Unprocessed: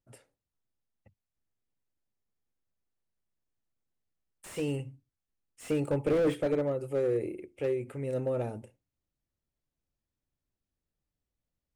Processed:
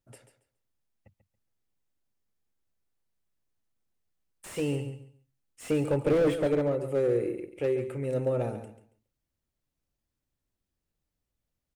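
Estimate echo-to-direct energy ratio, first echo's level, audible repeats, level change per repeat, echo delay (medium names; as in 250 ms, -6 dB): -10.5 dB, -10.5 dB, 2, -13.5 dB, 139 ms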